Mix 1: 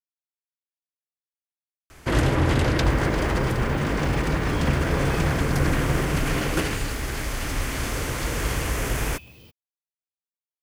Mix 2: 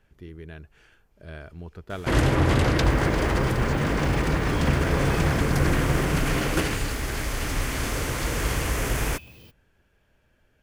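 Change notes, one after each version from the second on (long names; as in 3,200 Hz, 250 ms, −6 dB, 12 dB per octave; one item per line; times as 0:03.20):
speech: unmuted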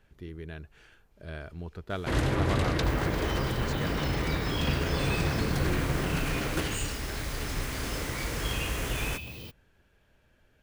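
first sound −6.5 dB
second sound +6.5 dB
master: add parametric band 3,900 Hz +4 dB 0.27 octaves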